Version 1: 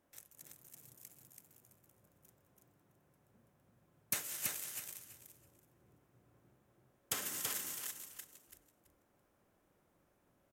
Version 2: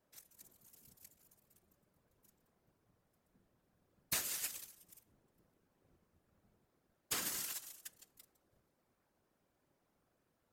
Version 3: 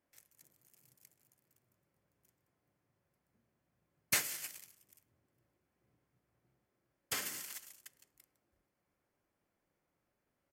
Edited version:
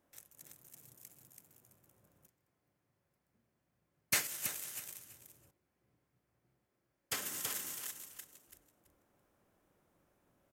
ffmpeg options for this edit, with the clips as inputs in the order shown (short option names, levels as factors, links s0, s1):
-filter_complex "[2:a]asplit=2[s0][s1];[0:a]asplit=3[s2][s3][s4];[s2]atrim=end=2.272[s5];[s0]atrim=start=2.268:end=4.272[s6];[s3]atrim=start=4.268:end=5.512[s7];[s1]atrim=start=5.508:end=7.162[s8];[s4]atrim=start=7.158[s9];[s5][s6]acrossfade=d=0.004:c1=hsin:c2=hsin[s10];[s10][s7]acrossfade=d=0.004:c1=hsin:c2=hsin[s11];[s11][s8]acrossfade=d=0.004:c1=hsin:c2=hsin[s12];[s12][s9]acrossfade=d=0.004:c1=hsin:c2=hsin"